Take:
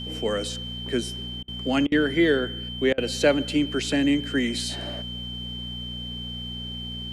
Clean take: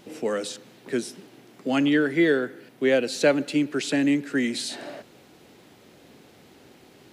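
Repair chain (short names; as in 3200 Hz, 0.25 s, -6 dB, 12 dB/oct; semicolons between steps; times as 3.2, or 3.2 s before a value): de-hum 60.3 Hz, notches 4; notch 3100 Hz, Q 30; interpolate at 1.43/1.87/2.93, 48 ms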